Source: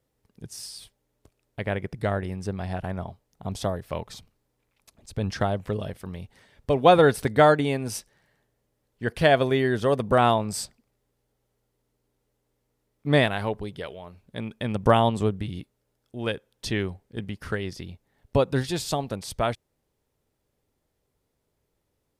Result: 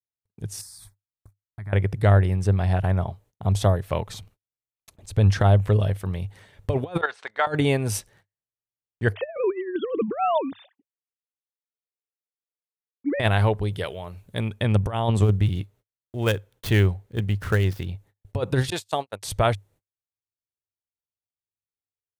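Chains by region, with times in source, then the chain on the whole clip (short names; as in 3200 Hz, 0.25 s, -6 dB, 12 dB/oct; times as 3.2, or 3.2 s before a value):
0.61–1.73 high shelf 10000 Hz +3.5 dB + compressor 2.5:1, threshold -44 dBFS + fixed phaser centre 1200 Hz, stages 4
7.01–7.47 Chebyshev band-pass 1000–8000 Hz + level quantiser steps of 12 dB + air absorption 130 m
9.14–13.2 sine-wave speech + bell 320 Hz +4 dB 1.5 oct
13.71–14.5 de-esser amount 85% + high shelf 5700 Hz +8 dB
15.22–17.9 switching dead time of 0.075 ms + bell 8900 Hz -2.5 dB
18.7–19.23 gate -30 dBFS, range -42 dB + HPF 620 Hz 6 dB/oct
whole clip: negative-ratio compressor -23 dBFS, ratio -0.5; gate -56 dBFS, range -39 dB; thirty-one-band EQ 100 Hz +11 dB, 250 Hz -5 dB, 5000 Hz -5 dB; gain +2 dB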